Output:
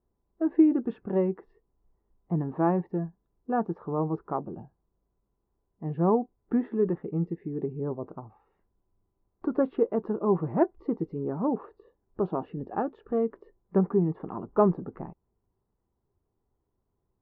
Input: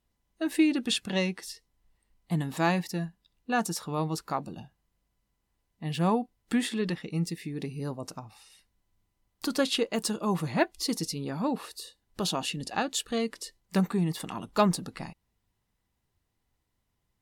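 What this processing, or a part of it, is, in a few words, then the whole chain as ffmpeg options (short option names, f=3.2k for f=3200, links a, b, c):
under water: -af "lowpass=f=1.2k:w=0.5412,lowpass=f=1.2k:w=1.3066,equalizer=f=390:t=o:w=0.46:g=10"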